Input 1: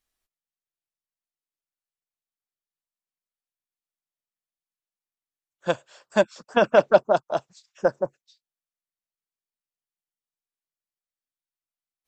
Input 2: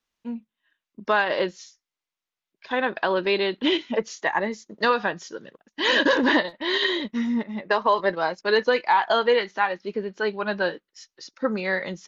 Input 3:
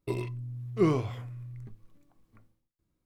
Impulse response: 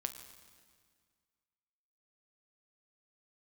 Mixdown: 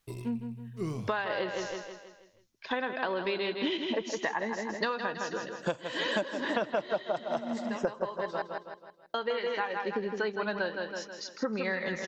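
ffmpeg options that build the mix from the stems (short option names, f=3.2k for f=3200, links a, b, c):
-filter_complex "[0:a]volume=2dB,asplit=4[a][b][c][d];[b]volume=-10.5dB[e];[c]volume=-11.5dB[f];[1:a]volume=0.5dB,asplit=3[g][h][i];[g]atrim=end=8.26,asetpts=PTS-STARTPTS,afade=t=out:st=8.256:d=0.004:c=hsin[j];[h]atrim=start=8.26:end=9.14,asetpts=PTS-STARTPTS,volume=0[k];[i]atrim=start=9.14,asetpts=PTS-STARTPTS,afade=t=in:d=0.004:c=hsin[l];[j][k][l]concat=n=3:v=0:a=1,asplit=2[m][n];[n]volume=-8.5dB[o];[2:a]bass=f=250:g=6,treble=f=4k:g=12,volume=-12dB,afade=t=out:st=1.25:d=0.28:silence=0.446684,asplit=2[p][q];[q]volume=-17.5dB[r];[d]apad=whole_len=532375[s];[m][s]sidechaincompress=threshold=-36dB:ratio=6:attack=23:release=1270[t];[3:a]atrim=start_sample=2205[u];[e][u]afir=irnorm=-1:irlink=0[v];[f][o][r]amix=inputs=3:normalize=0,aecho=0:1:161|322|483|644|805|966:1|0.45|0.202|0.0911|0.041|0.0185[w];[a][t][p][v][w]amix=inputs=5:normalize=0,acompressor=threshold=-28dB:ratio=8"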